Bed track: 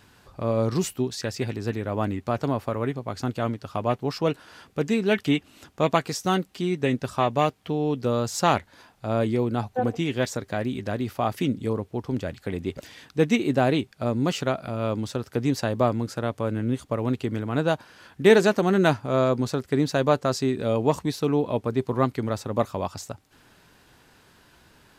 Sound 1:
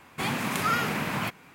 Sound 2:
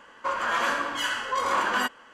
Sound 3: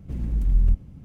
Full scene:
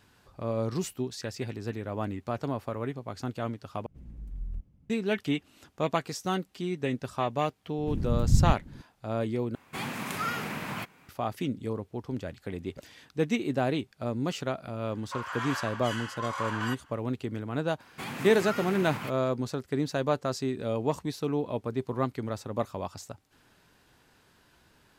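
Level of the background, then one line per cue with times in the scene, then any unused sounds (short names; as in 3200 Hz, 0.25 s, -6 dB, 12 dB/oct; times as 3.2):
bed track -6.5 dB
3.86 replace with 3 -18 dB
7.78 add 3 -2.5 dB + whisperiser
9.55 replace with 1 -6 dB
14.87 add 2 -9 dB + HPF 690 Hz 24 dB/oct
17.8 add 1 -7 dB + limiter -20.5 dBFS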